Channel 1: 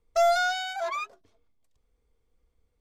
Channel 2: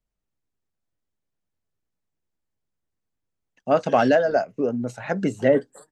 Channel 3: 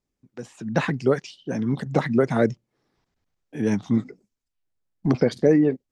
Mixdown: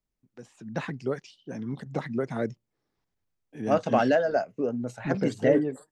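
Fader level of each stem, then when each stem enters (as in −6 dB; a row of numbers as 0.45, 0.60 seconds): muted, −4.5 dB, −9.5 dB; muted, 0.00 s, 0.00 s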